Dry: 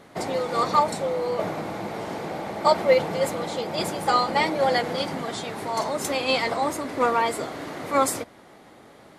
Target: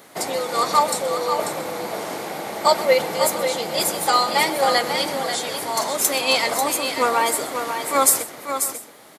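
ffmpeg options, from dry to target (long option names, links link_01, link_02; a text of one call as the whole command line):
ffmpeg -i in.wav -af "aemphasis=mode=production:type=bsi,aecho=1:1:126|541|677:0.141|0.422|0.1,volume=2.5dB" out.wav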